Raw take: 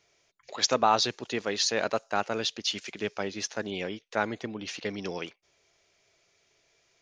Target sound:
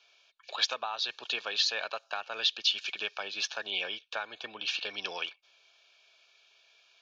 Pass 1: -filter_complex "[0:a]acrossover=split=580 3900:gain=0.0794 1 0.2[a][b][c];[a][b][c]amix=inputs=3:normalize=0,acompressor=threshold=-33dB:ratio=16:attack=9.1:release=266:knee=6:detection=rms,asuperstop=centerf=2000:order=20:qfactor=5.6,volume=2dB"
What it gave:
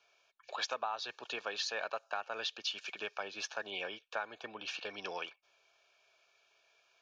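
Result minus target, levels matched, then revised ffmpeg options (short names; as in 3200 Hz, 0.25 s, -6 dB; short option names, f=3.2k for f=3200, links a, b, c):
4000 Hz band -3.0 dB
-filter_complex "[0:a]acrossover=split=580 3900:gain=0.0794 1 0.2[a][b][c];[a][b][c]amix=inputs=3:normalize=0,acompressor=threshold=-33dB:ratio=16:attack=9.1:release=266:knee=6:detection=rms,asuperstop=centerf=2000:order=20:qfactor=5.6,equalizer=f=3.7k:w=0.91:g=11.5,volume=2dB"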